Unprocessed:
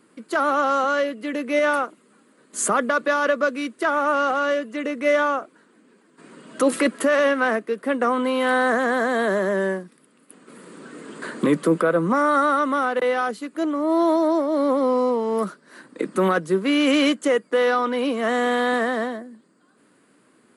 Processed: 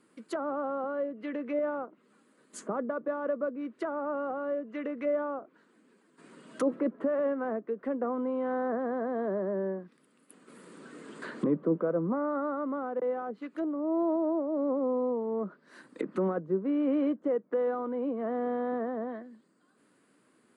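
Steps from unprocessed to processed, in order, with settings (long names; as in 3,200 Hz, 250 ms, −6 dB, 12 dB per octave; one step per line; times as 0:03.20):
treble cut that deepens with the level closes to 720 Hz, closed at −20.5 dBFS
level −8 dB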